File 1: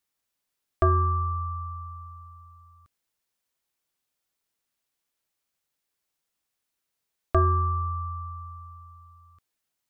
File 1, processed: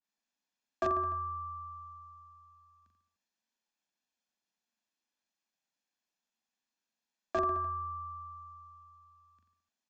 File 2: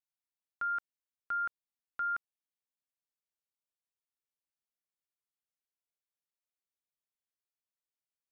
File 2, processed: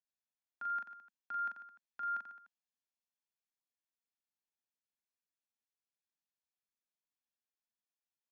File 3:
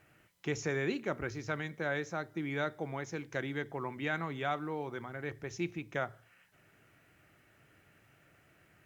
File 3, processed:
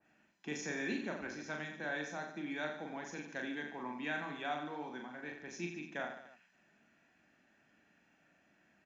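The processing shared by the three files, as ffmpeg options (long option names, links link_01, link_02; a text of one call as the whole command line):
ffmpeg -i in.wav -filter_complex "[0:a]lowshelf=frequency=160:width_type=q:width=3:gain=-10,aecho=1:1:40|88|145.6|214.7|297.7:0.631|0.398|0.251|0.158|0.1,acrossover=split=200|2800[link_01][link_02][link_03];[link_01]aeval=exprs='(mod(37.6*val(0)+1,2)-1)/37.6':channel_layout=same[link_04];[link_04][link_02][link_03]amix=inputs=3:normalize=0,aresample=16000,aresample=44100,aecho=1:1:1.2:0.43,adynamicequalizer=threshold=0.00631:dfrequency=1800:dqfactor=0.7:tfrequency=1800:tqfactor=0.7:attack=5:release=100:ratio=0.375:range=2:mode=boostabove:tftype=highshelf,volume=-8dB" out.wav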